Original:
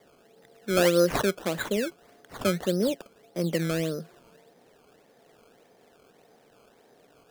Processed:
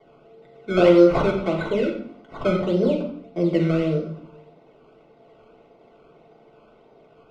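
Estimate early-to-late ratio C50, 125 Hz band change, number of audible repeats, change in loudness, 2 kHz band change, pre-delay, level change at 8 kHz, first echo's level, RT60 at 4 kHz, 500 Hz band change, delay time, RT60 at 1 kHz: 5.5 dB, +6.0 dB, none, +6.5 dB, +1.0 dB, 3 ms, under -15 dB, none, 0.45 s, +6.5 dB, none, 0.50 s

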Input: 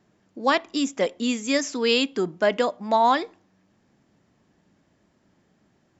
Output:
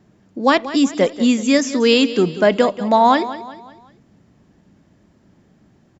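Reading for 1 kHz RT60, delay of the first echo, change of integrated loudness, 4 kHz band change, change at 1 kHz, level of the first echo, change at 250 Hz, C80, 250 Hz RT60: none, 0.186 s, +7.0 dB, +5.0 dB, +6.0 dB, -14.5 dB, +10.0 dB, none, none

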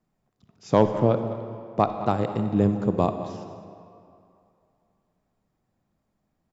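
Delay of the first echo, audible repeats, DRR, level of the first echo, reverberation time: 0.207 s, 1, 7.5 dB, -15.5 dB, 2.6 s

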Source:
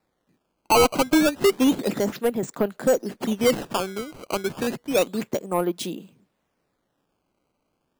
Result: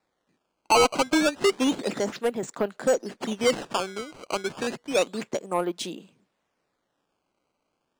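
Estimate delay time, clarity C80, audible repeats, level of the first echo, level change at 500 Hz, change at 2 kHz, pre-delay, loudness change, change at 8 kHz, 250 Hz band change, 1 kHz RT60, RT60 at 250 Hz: none, none, none, none, -2.5 dB, 0.0 dB, none, -2.5 dB, -1.5 dB, -5.0 dB, none, none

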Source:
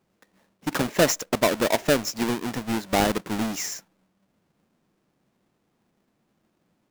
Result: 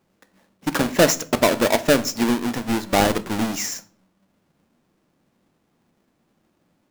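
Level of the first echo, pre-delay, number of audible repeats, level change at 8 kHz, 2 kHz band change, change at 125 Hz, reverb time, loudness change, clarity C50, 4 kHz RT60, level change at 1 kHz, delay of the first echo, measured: none, 4 ms, none, +3.5 dB, +4.0 dB, +3.5 dB, 0.45 s, +4.0 dB, 18.5 dB, 0.35 s, +4.0 dB, none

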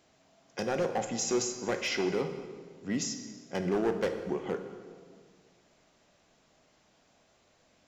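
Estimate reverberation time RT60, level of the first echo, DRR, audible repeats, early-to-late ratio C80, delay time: 1.7 s, none, 6.5 dB, none, 9.5 dB, none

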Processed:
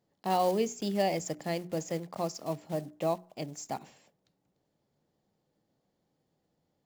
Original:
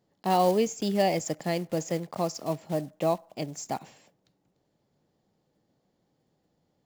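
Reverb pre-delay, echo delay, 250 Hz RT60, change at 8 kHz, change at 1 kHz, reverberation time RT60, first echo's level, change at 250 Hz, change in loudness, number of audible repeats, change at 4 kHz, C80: none, none, none, -4.0 dB, -4.0 dB, none, none, -4.5 dB, -4.0 dB, none, -4.0 dB, none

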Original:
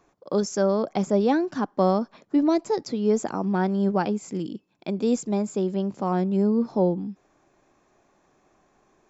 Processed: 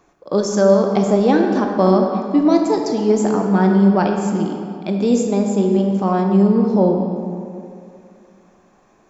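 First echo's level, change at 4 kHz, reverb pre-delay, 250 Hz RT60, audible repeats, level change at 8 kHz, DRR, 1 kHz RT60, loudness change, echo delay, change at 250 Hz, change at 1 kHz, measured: none, +7.0 dB, 17 ms, 2.4 s, none, n/a, 2.0 dB, 2.4 s, +8.0 dB, none, +8.5 dB, +7.5 dB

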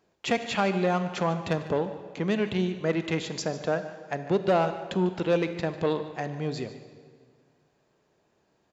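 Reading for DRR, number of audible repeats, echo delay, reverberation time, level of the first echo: 9.5 dB, 1, 0.148 s, 1.8 s, -16.5 dB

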